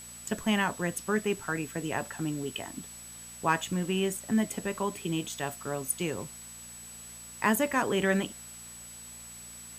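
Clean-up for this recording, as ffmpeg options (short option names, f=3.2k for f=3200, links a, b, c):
-af "bandreject=f=58.5:t=h:w=4,bandreject=f=117:t=h:w=4,bandreject=f=175.5:t=h:w=4,bandreject=f=234:t=h:w=4,bandreject=f=7.9k:w=30,afwtdn=0.0032"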